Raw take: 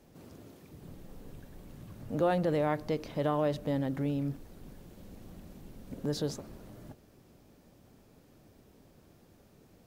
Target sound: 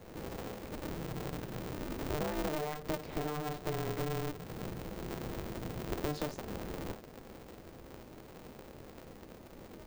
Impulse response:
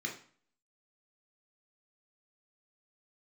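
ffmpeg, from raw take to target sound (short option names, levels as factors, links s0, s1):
-filter_complex "[0:a]equalizer=f=380:w=1.2:g=4.5,acompressor=threshold=0.01:ratio=8,asplit=2[s0][s1];[1:a]atrim=start_sample=2205,asetrate=66150,aresample=44100[s2];[s1][s2]afir=irnorm=-1:irlink=0,volume=0.794[s3];[s0][s3]amix=inputs=2:normalize=0,aeval=exprs='val(0)*sgn(sin(2*PI*150*n/s))':c=same,volume=1.5"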